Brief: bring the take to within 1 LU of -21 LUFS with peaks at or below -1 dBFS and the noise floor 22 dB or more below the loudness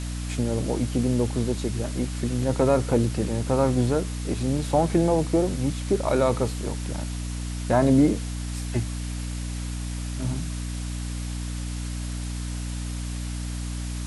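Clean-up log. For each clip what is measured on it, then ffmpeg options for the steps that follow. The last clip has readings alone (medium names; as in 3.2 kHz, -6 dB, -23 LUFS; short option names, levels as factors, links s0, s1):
hum 60 Hz; highest harmonic 300 Hz; hum level -28 dBFS; noise floor -31 dBFS; noise floor target -48 dBFS; loudness -26.0 LUFS; peak level -8.0 dBFS; loudness target -21.0 LUFS
-> -af "bandreject=f=60:t=h:w=6,bandreject=f=120:t=h:w=6,bandreject=f=180:t=h:w=6,bandreject=f=240:t=h:w=6,bandreject=f=300:t=h:w=6"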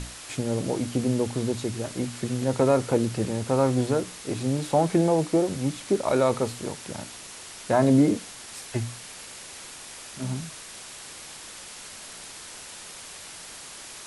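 hum not found; noise floor -42 dBFS; noise floor target -48 dBFS
-> -af "afftdn=nr=6:nf=-42"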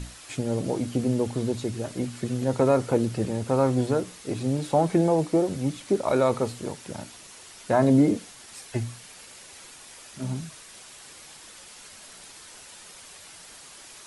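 noise floor -47 dBFS; noise floor target -48 dBFS
-> -af "afftdn=nr=6:nf=-47"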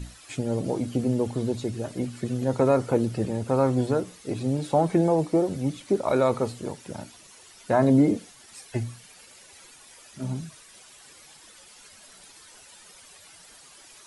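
noise floor -51 dBFS; loudness -25.5 LUFS; peak level -9.0 dBFS; loudness target -21.0 LUFS
-> -af "volume=1.68"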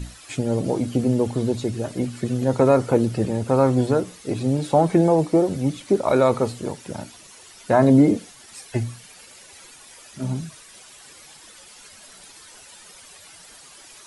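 loudness -21.0 LUFS; peak level -4.5 dBFS; noise floor -47 dBFS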